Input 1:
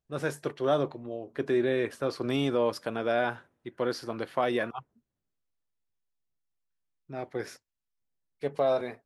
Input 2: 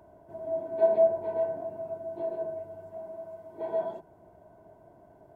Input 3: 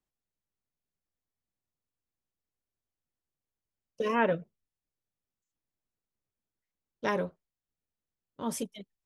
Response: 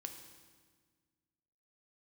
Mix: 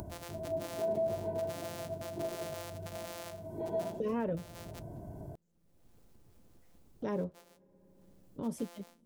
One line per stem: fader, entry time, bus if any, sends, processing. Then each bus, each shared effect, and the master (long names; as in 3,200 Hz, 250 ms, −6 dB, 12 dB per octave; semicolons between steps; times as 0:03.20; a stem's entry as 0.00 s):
−6.5 dB, 0.00 s, no send, samples sorted by size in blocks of 256 samples; high-pass filter 470 Hz 24 dB per octave; automatic ducking −14 dB, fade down 0.25 s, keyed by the third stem
−1.0 dB, 0.00 s, no send, bass and treble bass +12 dB, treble +7 dB
−6.0 dB, 0.00 s, send −22 dB, tilt shelving filter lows +6.5 dB, about 1,200 Hz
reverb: on, RT60 1.6 s, pre-delay 3 ms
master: parametric band 1,600 Hz −7.5 dB 2.8 octaves; upward compression, threshold −35 dBFS; brickwall limiter −25.5 dBFS, peak gain reduction 9.5 dB